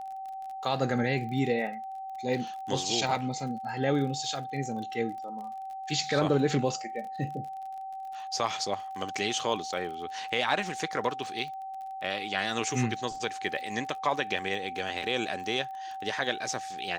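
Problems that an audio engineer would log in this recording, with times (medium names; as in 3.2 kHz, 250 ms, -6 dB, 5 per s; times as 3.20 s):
crackle 39 per s -39 dBFS
whine 770 Hz -36 dBFS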